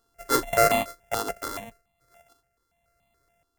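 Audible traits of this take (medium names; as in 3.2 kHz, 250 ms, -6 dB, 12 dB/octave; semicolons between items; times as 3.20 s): a buzz of ramps at a fixed pitch in blocks of 64 samples; random-step tremolo; notches that jump at a steady rate 7 Hz 610–1500 Hz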